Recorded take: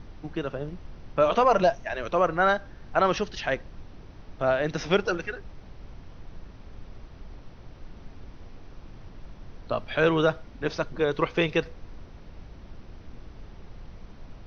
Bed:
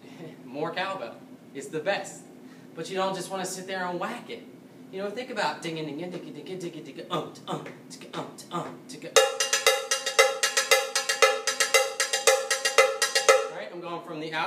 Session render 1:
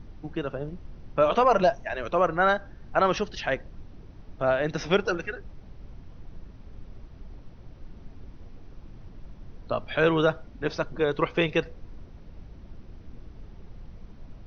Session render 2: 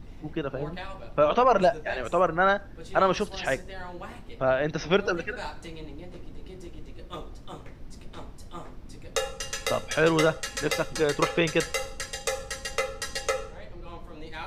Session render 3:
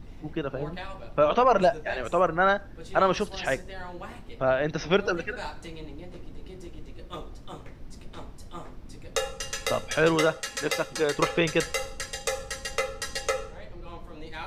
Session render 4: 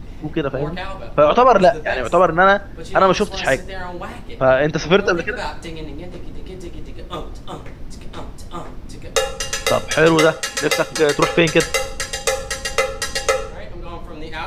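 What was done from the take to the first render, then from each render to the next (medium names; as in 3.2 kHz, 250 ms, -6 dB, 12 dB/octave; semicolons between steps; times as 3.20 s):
noise reduction 6 dB, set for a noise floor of -47 dBFS
add bed -9.5 dB
10.15–11.18 s: bass shelf 140 Hz -10 dB
trim +10 dB; peak limiter -2 dBFS, peak gain reduction 3 dB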